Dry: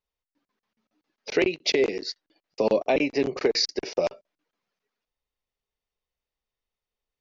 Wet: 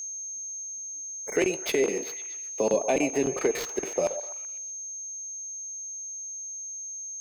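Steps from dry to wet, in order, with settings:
running median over 9 samples
0:01.83–0:02.74: high-pass filter 110 Hz 24 dB per octave
in parallel at +2 dB: brickwall limiter −19.5 dBFS, peak gain reduction 9 dB
on the sum: steady tone 6,400 Hz −27 dBFS
0:00.55–0:01.34: healed spectral selection 2,300–5,100 Hz before
echo through a band-pass that steps 126 ms, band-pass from 660 Hz, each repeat 0.7 octaves, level −9 dB
on a send at −15 dB: convolution reverb, pre-delay 3 ms
on the sum: level −6.5 dB

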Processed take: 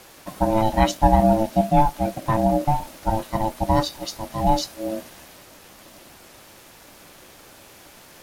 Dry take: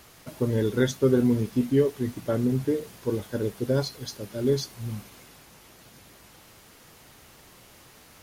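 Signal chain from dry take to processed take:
ring modulation 440 Hz
level +8 dB

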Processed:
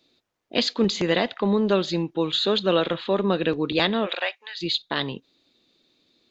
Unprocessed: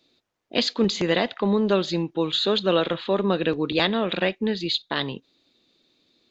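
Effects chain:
0:04.05–0:04.61: high-pass filter 410 Hz → 1,400 Hz 24 dB per octave

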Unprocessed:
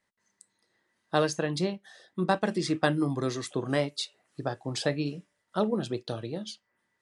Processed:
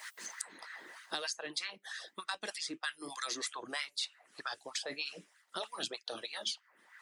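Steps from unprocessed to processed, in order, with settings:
auto-filter high-pass sine 3.2 Hz 290–1,500 Hz
harmonic and percussive parts rebalanced harmonic −13 dB
reversed playback
downward compressor 6 to 1, threshold −35 dBFS, peak gain reduction 16 dB
reversed playback
guitar amp tone stack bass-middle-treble 5-5-5
multiband upward and downward compressor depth 100%
level +12.5 dB

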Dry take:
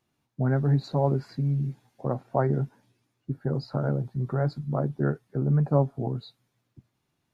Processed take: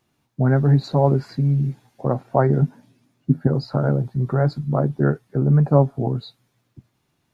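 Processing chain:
0:02.62–0:03.47: thirty-one-band graphic EQ 160 Hz +10 dB, 250 Hz +11 dB, 630 Hz +5 dB
level +7 dB

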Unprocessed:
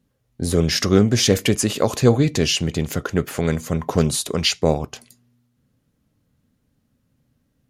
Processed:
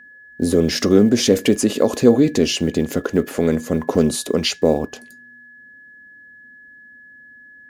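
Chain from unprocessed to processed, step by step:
one scale factor per block 7 bits
octave-band graphic EQ 125/250/500 Hz −7/+11/+7 dB
in parallel at +2 dB: brickwall limiter −5.5 dBFS, peak gain reduction 10.5 dB
on the sum: steady tone 1,700 Hz −33 dBFS
level −9 dB

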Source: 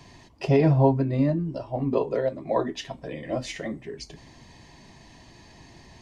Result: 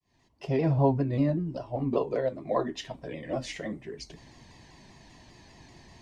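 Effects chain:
fade in at the beginning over 0.95 s
pitch modulation by a square or saw wave saw down 5.1 Hz, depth 100 cents
level −3 dB

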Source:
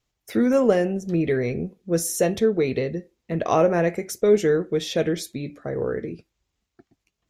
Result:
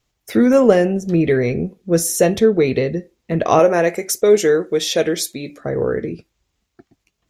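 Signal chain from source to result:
0:03.59–0:05.61: bass and treble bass −10 dB, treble +6 dB
level +6.5 dB

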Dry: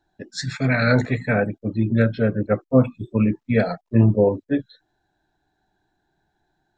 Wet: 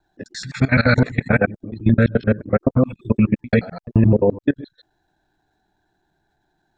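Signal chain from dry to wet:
reversed piece by piece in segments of 86 ms
output level in coarse steps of 19 dB
dynamic equaliser 610 Hz, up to −3 dB, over −36 dBFS, Q 1.3
level +7 dB

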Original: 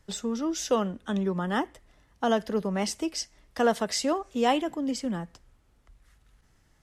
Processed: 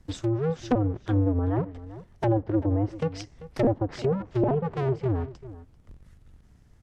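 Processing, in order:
sub-harmonics by changed cycles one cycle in 2, inverted
low-shelf EQ 360 Hz +12 dB
treble cut that deepens with the level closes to 640 Hz, closed at −17 dBFS
slap from a distant wall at 67 metres, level −16 dB
level −3 dB

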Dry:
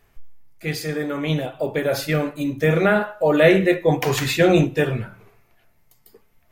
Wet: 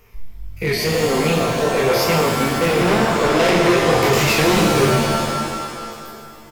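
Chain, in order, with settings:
spectrum averaged block by block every 50 ms
EQ curve with evenly spaced ripples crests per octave 0.83, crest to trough 9 dB
in parallel at −2 dB: downward compressor, threshold −28 dBFS, peak gain reduction 17 dB
on the sum: tape wow and flutter 140 cents
chorus effect 0.43 Hz, delay 19.5 ms, depth 6.8 ms
gain into a clipping stage and back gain 22 dB
on a send: echo with shifted repeats 137 ms, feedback 60%, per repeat −48 Hz, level −13 dB
on the sum: reverb with rising layers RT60 2 s, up +7 semitones, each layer −2 dB, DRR 3.5 dB
level +6.5 dB

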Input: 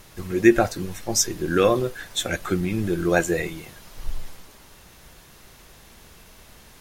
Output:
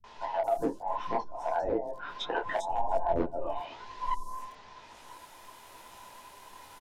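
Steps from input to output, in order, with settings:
frequency inversion band by band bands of 1,000 Hz
treble cut that deepens with the level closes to 330 Hz, closed at −18.5 dBFS
0:02.69–0:03.58: low-shelf EQ 180 Hz +12 dB
hard clipping −18.5 dBFS, distortion −18 dB
three-band delay without the direct sound lows, mids, highs 40/440 ms, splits 160/5,500 Hz
micro pitch shift up and down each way 35 cents
level +1.5 dB

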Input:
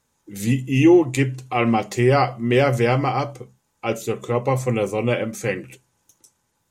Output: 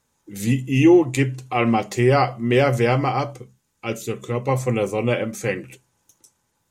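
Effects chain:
0:03.38–0:04.49: parametric band 760 Hz −7.5 dB 1.4 octaves

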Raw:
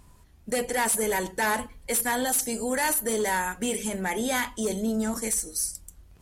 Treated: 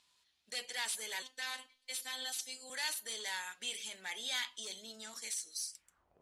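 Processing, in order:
band-pass filter sweep 3,800 Hz → 540 Hz, 0:05.68–0:06.18
0:01.22–0:02.70: phases set to zero 258 Hz
level +1 dB

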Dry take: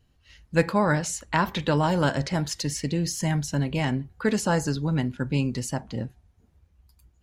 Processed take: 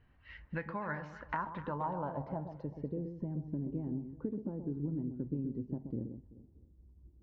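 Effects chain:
Butterworth low-pass 6,000 Hz
parametric band 990 Hz +4 dB 0.42 octaves
downward compressor 8 to 1, threshold −36 dBFS, peak gain reduction 21 dB
low-pass filter sweep 1,900 Hz → 340 Hz, 0:00.89–0:03.54
on a send: delay that swaps between a low-pass and a high-pass 128 ms, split 1,000 Hz, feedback 52%, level −8 dB
on the sum: level −2 dB

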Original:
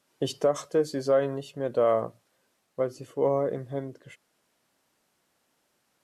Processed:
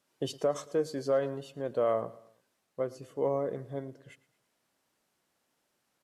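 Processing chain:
repeating echo 112 ms, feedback 46%, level −20 dB
level −5 dB

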